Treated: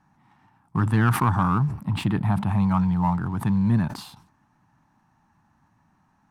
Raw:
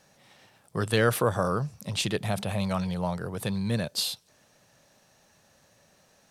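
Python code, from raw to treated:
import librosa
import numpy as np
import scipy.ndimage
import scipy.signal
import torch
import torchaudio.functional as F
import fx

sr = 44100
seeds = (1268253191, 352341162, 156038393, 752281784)

y = fx.curve_eq(x, sr, hz=(300.0, 520.0, 880.0, 3800.0), db=(0, -27, 3, -22))
y = fx.leveller(y, sr, passes=1)
y = fx.peak_eq(y, sr, hz=6300.0, db=fx.line((1.7, -13.0), (2.47, -4.5)), octaves=0.59, at=(1.7, 2.47), fade=0.02)
y = fx.sustainer(y, sr, db_per_s=110.0)
y = y * librosa.db_to_amplitude(5.0)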